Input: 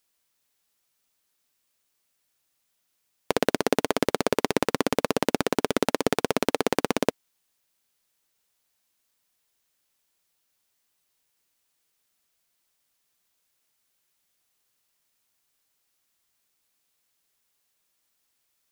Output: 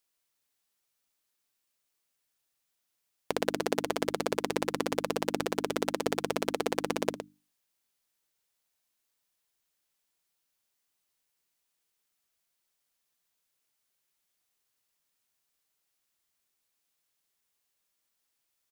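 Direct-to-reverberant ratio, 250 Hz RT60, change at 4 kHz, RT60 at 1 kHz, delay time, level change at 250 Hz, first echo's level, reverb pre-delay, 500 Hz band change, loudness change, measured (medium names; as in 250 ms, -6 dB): no reverb, no reverb, -5.5 dB, no reverb, 114 ms, -7.0 dB, -10.0 dB, no reverb, -6.0 dB, -6.0 dB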